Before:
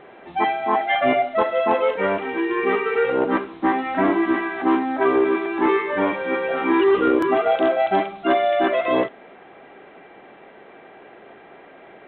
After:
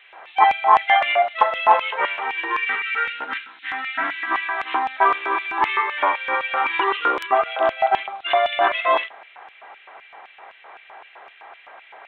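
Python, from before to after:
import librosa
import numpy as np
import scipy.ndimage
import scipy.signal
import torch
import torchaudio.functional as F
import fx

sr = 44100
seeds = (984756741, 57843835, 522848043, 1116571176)

y = fx.filter_lfo_highpass(x, sr, shape='square', hz=3.9, low_hz=920.0, high_hz=2600.0, q=2.2)
y = fx.spec_box(y, sr, start_s=2.65, length_s=1.66, low_hz=320.0, high_hz=1300.0, gain_db=-13)
y = fx.high_shelf(y, sr, hz=3300.0, db=-9.5, at=(7.26, 8.25))
y = F.gain(torch.from_numpy(y), 2.5).numpy()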